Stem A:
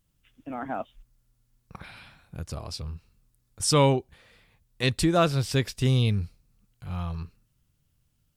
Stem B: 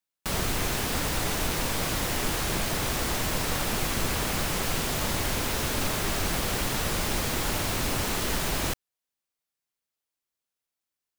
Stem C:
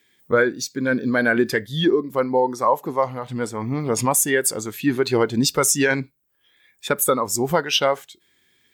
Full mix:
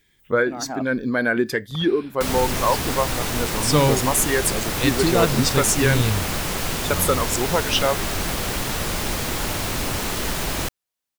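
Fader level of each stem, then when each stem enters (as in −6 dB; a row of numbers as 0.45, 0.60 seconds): +1.5, +3.0, −2.0 decibels; 0.00, 1.95, 0.00 seconds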